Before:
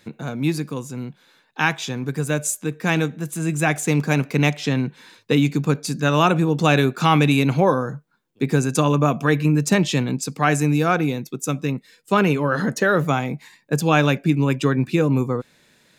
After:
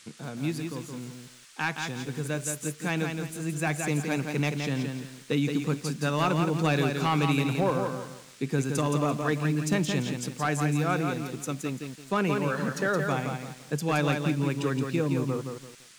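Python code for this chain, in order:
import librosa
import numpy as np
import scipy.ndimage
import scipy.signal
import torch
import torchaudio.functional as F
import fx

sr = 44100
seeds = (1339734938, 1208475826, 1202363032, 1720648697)

y = fx.dmg_noise_band(x, sr, seeds[0], low_hz=1200.0, high_hz=9300.0, level_db=-45.0)
y = np.clip(10.0 ** (8.0 / 20.0) * y, -1.0, 1.0) / 10.0 ** (8.0 / 20.0)
y = fx.echo_crushed(y, sr, ms=170, feedback_pct=35, bits=7, wet_db=-5)
y = F.gain(torch.from_numpy(y), -9.0).numpy()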